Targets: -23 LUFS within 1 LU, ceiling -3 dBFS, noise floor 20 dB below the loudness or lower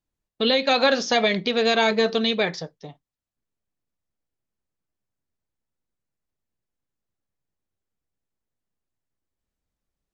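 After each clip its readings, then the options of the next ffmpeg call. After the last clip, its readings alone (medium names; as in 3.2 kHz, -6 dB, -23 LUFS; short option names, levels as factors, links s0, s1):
loudness -21.0 LUFS; peak level -7.5 dBFS; loudness target -23.0 LUFS
-> -af "volume=0.794"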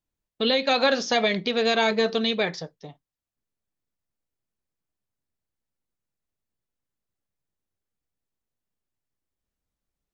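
loudness -23.0 LUFS; peak level -9.5 dBFS; noise floor -88 dBFS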